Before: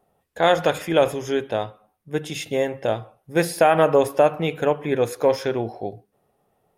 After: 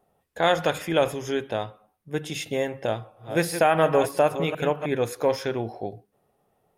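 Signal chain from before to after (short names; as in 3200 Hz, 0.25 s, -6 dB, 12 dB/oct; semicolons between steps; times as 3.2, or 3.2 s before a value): 2.76–4.86 reverse delay 0.358 s, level -9.5 dB; dynamic EQ 490 Hz, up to -3 dB, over -27 dBFS, Q 0.77; gain -1.5 dB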